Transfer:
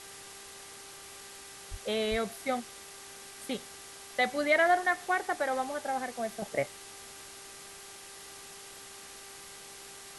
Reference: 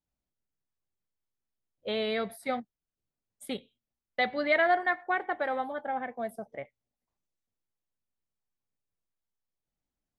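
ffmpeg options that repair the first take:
-filter_complex "[0:a]bandreject=f=395.4:t=h:w=4,bandreject=f=790.8:t=h:w=4,bandreject=f=1186.2:t=h:w=4,bandreject=f=1581.6:t=h:w=4,bandreject=f=1977:t=h:w=4,asplit=3[s0][s1][s2];[s0]afade=t=out:st=1.7:d=0.02[s3];[s1]highpass=f=140:w=0.5412,highpass=f=140:w=1.3066,afade=t=in:st=1.7:d=0.02,afade=t=out:st=1.82:d=0.02[s4];[s2]afade=t=in:st=1.82:d=0.02[s5];[s3][s4][s5]amix=inputs=3:normalize=0,asplit=3[s6][s7][s8];[s6]afade=t=out:st=2.1:d=0.02[s9];[s7]highpass=f=140:w=0.5412,highpass=f=140:w=1.3066,afade=t=in:st=2.1:d=0.02,afade=t=out:st=2.22:d=0.02[s10];[s8]afade=t=in:st=2.22:d=0.02[s11];[s9][s10][s11]amix=inputs=3:normalize=0,afwtdn=0.005,asetnsamples=n=441:p=0,asendcmd='6.42 volume volume -9.5dB',volume=1"

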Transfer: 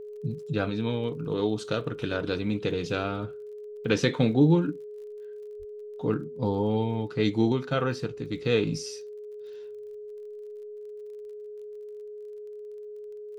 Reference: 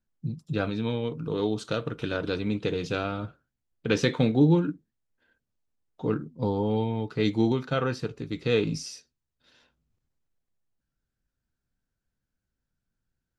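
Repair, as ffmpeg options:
-filter_complex "[0:a]adeclick=t=4,bandreject=f=420:w=30,asplit=3[s0][s1][s2];[s0]afade=t=out:st=5.58:d=0.02[s3];[s1]highpass=f=140:w=0.5412,highpass=f=140:w=1.3066,afade=t=in:st=5.58:d=0.02,afade=t=out:st=5.7:d=0.02[s4];[s2]afade=t=in:st=5.7:d=0.02[s5];[s3][s4][s5]amix=inputs=3:normalize=0"

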